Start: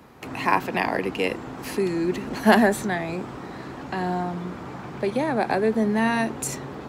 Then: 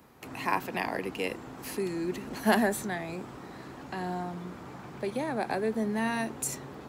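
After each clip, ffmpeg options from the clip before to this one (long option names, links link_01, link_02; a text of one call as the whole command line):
ffmpeg -i in.wav -af "highshelf=frequency=7700:gain=9.5,volume=-8dB" out.wav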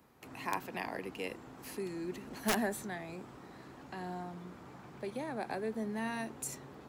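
ffmpeg -i in.wav -af "aeval=exprs='(mod(5.31*val(0)+1,2)-1)/5.31':channel_layout=same,volume=-7.5dB" out.wav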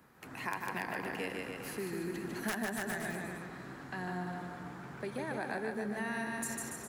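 ffmpeg -i in.wav -af "equalizer=frequency=160:width_type=o:width=0.67:gain=4,equalizer=frequency=1600:width_type=o:width=0.67:gain=8,equalizer=frequency=10000:width_type=o:width=0.67:gain=3,aecho=1:1:150|285|406.5|515.8|614.3:0.631|0.398|0.251|0.158|0.1,acompressor=threshold=-33dB:ratio=6" out.wav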